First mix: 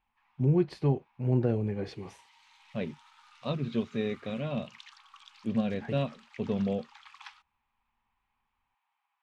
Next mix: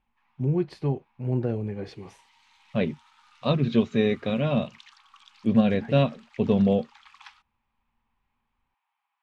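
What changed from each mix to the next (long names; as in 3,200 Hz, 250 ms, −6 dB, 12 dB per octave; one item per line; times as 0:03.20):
second voice +9.0 dB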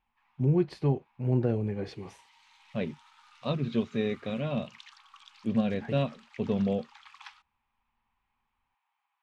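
second voice −7.0 dB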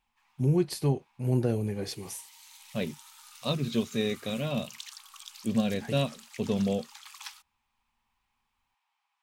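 master: remove low-pass filter 2,500 Hz 12 dB per octave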